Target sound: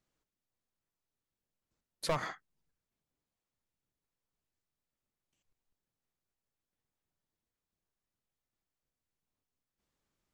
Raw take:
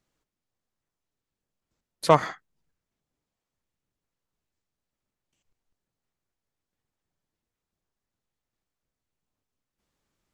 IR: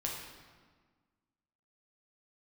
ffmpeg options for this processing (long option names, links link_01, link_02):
-af "asoftclip=type=hard:threshold=-18dB,acompressor=threshold=-23dB:ratio=6,volume=-5.5dB"